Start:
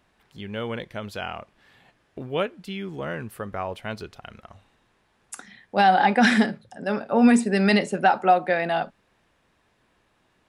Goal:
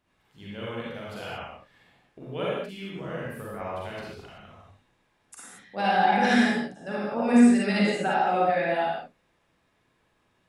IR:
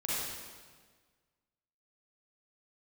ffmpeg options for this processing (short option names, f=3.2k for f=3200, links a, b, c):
-filter_complex "[1:a]atrim=start_sample=2205,afade=t=out:st=0.29:d=0.01,atrim=end_sample=13230[a];[0:a][a]afir=irnorm=-1:irlink=0,volume=-8.5dB"